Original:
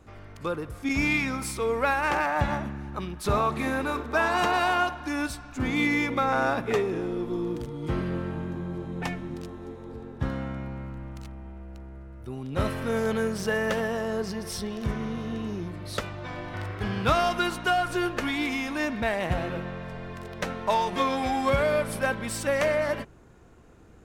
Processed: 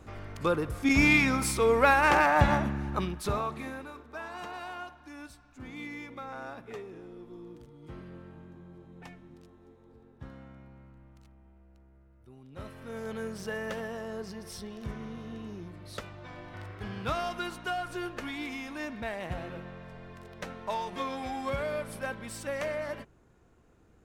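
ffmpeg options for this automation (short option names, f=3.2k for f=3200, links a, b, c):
-af "volume=10.5dB,afade=t=out:st=2.99:d=0.34:silence=0.334965,afade=t=out:st=3.33:d=0.59:silence=0.316228,afade=t=in:st=12.73:d=0.57:silence=0.421697"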